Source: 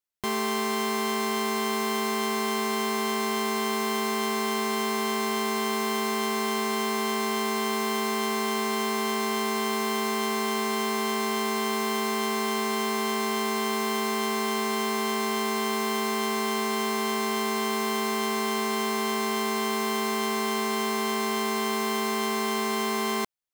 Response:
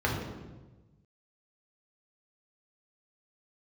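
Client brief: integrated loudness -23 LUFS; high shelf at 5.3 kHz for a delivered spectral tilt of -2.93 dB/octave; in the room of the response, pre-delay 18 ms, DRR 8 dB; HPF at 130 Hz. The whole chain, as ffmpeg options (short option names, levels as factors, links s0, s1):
-filter_complex "[0:a]highpass=130,highshelf=f=5300:g=-3.5,asplit=2[s0][s1];[1:a]atrim=start_sample=2205,adelay=18[s2];[s1][s2]afir=irnorm=-1:irlink=0,volume=0.106[s3];[s0][s3]amix=inputs=2:normalize=0,volume=1.19"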